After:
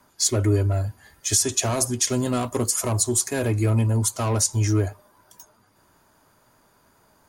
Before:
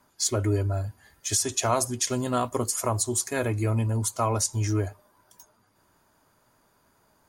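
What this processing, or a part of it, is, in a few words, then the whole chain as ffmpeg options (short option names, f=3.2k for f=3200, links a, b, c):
one-band saturation: -filter_complex "[0:a]acrossover=split=440|4200[a][b][c];[b]asoftclip=type=tanh:threshold=-32dB[d];[a][d][c]amix=inputs=3:normalize=0,volume=5dB"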